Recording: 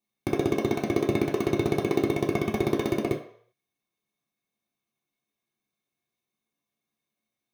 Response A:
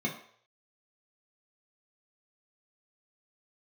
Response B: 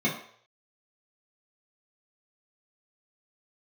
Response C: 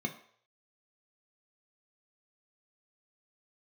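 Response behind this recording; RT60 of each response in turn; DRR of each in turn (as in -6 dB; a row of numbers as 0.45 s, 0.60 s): A; 0.60 s, 0.60 s, 0.60 s; -3.0 dB, -7.5 dB, 3.0 dB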